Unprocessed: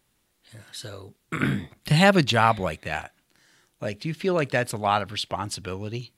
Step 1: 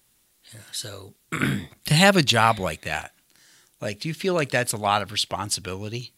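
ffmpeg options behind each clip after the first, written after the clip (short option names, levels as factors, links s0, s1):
-af "highshelf=f=3700:g=10.5"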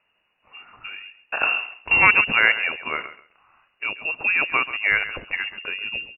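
-filter_complex "[0:a]asplit=2[s0][s1];[s1]aeval=exprs='clip(val(0),-1,0.075)':c=same,volume=0.266[s2];[s0][s2]amix=inputs=2:normalize=0,aecho=1:1:135|270:0.2|0.0359,lowpass=f=2500:t=q:w=0.5098,lowpass=f=2500:t=q:w=0.6013,lowpass=f=2500:t=q:w=0.9,lowpass=f=2500:t=q:w=2.563,afreqshift=-2900"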